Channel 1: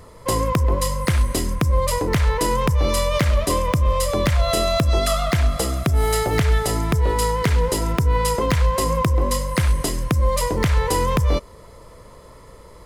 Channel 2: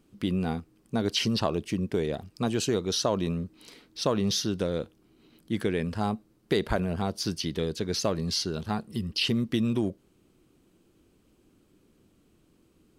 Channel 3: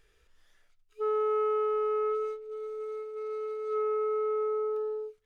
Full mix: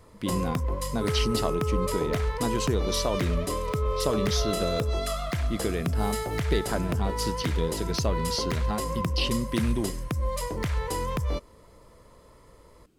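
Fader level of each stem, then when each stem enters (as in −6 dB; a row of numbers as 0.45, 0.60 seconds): −10.0, −2.0, −4.0 decibels; 0.00, 0.00, 0.00 seconds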